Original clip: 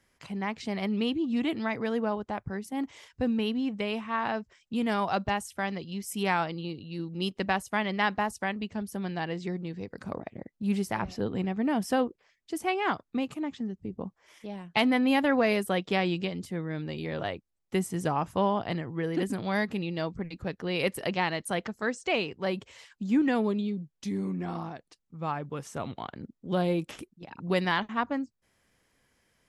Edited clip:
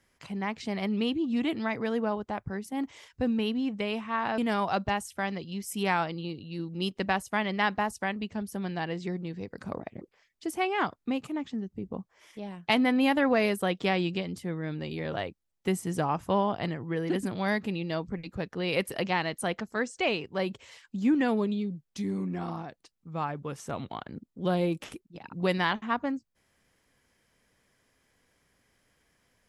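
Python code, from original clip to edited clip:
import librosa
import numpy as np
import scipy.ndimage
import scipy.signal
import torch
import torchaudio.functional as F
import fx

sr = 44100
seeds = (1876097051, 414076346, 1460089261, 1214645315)

y = fx.edit(x, sr, fx.cut(start_s=4.38, length_s=0.4),
    fx.cut(start_s=10.41, length_s=1.67), tone=tone)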